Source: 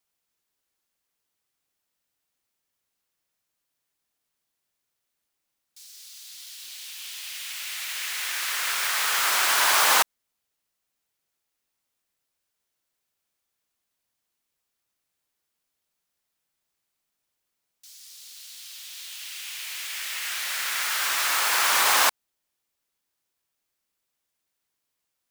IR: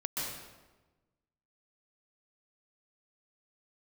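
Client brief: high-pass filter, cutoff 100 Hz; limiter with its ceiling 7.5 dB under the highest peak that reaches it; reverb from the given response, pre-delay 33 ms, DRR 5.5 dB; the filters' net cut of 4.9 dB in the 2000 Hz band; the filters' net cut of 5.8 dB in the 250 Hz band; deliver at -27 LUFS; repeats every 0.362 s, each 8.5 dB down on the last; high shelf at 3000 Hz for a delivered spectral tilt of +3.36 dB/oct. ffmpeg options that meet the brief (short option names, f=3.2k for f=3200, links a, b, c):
-filter_complex "[0:a]highpass=100,equalizer=f=250:t=o:g=-8.5,equalizer=f=2k:t=o:g=-8,highshelf=f=3k:g=4.5,alimiter=limit=-13.5dB:level=0:latency=1,aecho=1:1:362|724|1086|1448:0.376|0.143|0.0543|0.0206,asplit=2[a][b];[1:a]atrim=start_sample=2205,adelay=33[c];[b][c]afir=irnorm=-1:irlink=0,volume=-10dB[d];[a][d]amix=inputs=2:normalize=0,volume=-4dB"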